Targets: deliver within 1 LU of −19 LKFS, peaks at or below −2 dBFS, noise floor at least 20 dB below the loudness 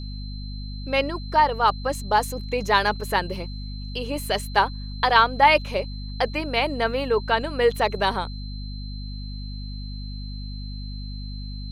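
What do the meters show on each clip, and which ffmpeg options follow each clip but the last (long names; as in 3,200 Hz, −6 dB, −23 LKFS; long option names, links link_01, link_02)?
mains hum 50 Hz; hum harmonics up to 250 Hz; level of the hum −31 dBFS; interfering tone 4,100 Hz; level of the tone −42 dBFS; integrated loudness −23.0 LKFS; sample peak −3.5 dBFS; target loudness −19.0 LKFS
→ -af "bandreject=frequency=50:width_type=h:width=4,bandreject=frequency=100:width_type=h:width=4,bandreject=frequency=150:width_type=h:width=4,bandreject=frequency=200:width_type=h:width=4,bandreject=frequency=250:width_type=h:width=4"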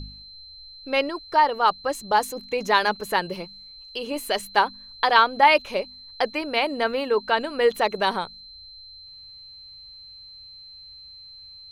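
mains hum none found; interfering tone 4,100 Hz; level of the tone −42 dBFS
→ -af "bandreject=frequency=4100:width=30"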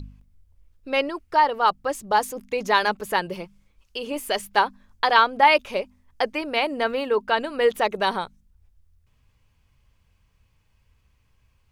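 interfering tone none found; integrated loudness −23.0 LKFS; sample peak −3.5 dBFS; target loudness −19.0 LKFS
→ -af "volume=4dB,alimiter=limit=-2dB:level=0:latency=1"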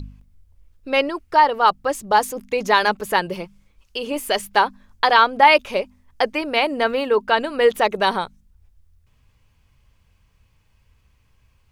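integrated loudness −19.0 LKFS; sample peak −2.0 dBFS; background noise floor −61 dBFS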